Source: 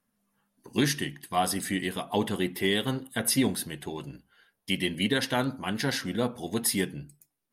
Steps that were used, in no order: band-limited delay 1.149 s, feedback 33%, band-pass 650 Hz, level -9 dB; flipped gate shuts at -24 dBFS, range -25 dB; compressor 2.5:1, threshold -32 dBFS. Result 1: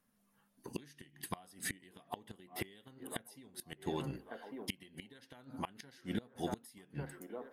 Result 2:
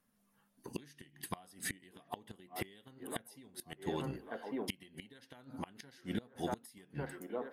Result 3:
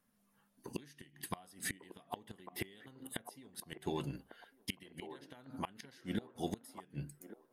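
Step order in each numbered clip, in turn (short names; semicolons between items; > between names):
compressor > band-limited delay > flipped gate; band-limited delay > compressor > flipped gate; compressor > flipped gate > band-limited delay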